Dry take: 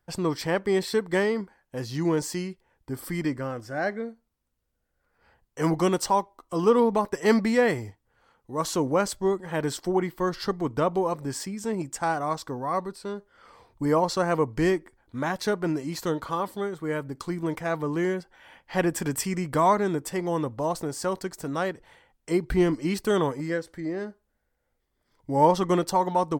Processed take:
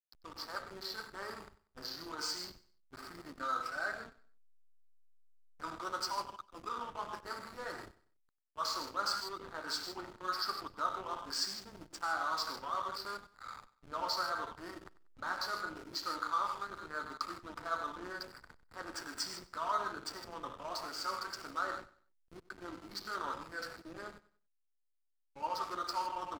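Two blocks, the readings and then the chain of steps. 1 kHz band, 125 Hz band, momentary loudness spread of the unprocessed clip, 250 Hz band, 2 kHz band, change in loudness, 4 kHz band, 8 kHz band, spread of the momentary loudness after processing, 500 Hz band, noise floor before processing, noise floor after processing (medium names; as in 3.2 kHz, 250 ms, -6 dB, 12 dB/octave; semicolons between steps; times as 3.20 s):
-9.5 dB, -28.0 dB, 11 LU, -24.5 dB, -8.0 dB, -12.5 dB, -1.5 dB, -10.5 dB, 14 LU, -21.5 dB, -76 dBFS, -78 dBFS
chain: fade-in on the opening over 1.51 s; reverse; compression 5:1, threshold -35 dBFS, peak gain reduction 19 dB; reverse; two resonant band-passes 2.5 kHz, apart 1.8 oct; comb 3.2 ms, depth 34%; gated-style reverb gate 180 ms flat, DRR 2 dB; flange 0.75 Hz, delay 9.4 ms, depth 1.7 ms, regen -38%; hysteresis with a dead band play -54 dBFS; on a send: feedback delay 95 ms, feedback 33%, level -18.5 dB; on the sum: trim +17 dB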